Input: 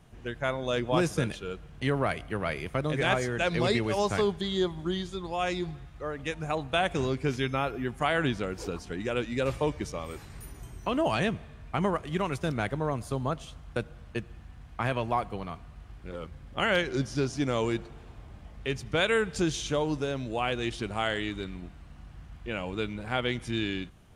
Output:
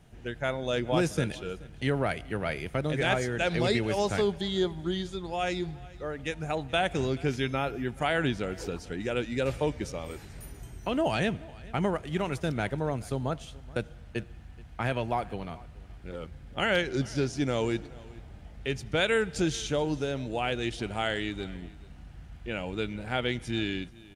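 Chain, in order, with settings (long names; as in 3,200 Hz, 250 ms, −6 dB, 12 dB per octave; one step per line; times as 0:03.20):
parametric band 1,100 Hz −9 dB 0.24 octaves
on a send: single-tap delay 428 ms −22 dB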